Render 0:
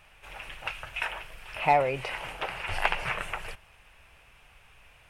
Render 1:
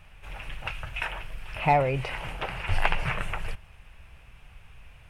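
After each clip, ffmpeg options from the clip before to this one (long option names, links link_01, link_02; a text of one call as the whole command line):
ffmpeg -i in.wav -af "bass=frequency=250:gain=11,treble=frequency=4000:gain=-2" out.wav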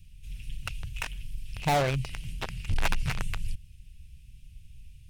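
ffmpeg -i in.wav -filter_complex "[0:a]acrossover=split=220|3500[link_01][link_02][link_03];[link_02]acrusher=bits=3:mix=0:aa=0.5[link_04];[link_01][link_04][link_03]amix=inputs=3:normalize=0,asoftclip=type=hard:threshold=-22.5dB,volume=2dB" out.wav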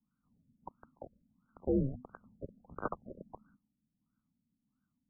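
ffmpeg -i in.wav -af "highpass=frequency=240:width_type=q:width=0.5412,highpass=frequency=240:width_type=q:width=1.307,lowpass=frequency=3400:width_type=q:width=0.5176,lowpass=frequency=3400:width_type=q:width=0.7071,lowpass=frequency=3400:width_type=q:width=1.932,afreqshift=-380,afftfilt=real='re*lt(b*sr/1024,600*pow(1600/600,0.5+0.5*sin(2*PI*1.5*pts/sr)))':imag='im*lt(b*sr/1024,600*pow(1600/600,0.5+0.5*sin(2*PI*1.5*pts/sr)))':win_size=1024:overlap=0.75,volume=-3.5dB" out.wav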